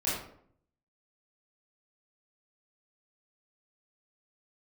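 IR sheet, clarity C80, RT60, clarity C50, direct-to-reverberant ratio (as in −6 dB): 5.0 dB, 0.65 s, 1.0 dB, −10.0 dB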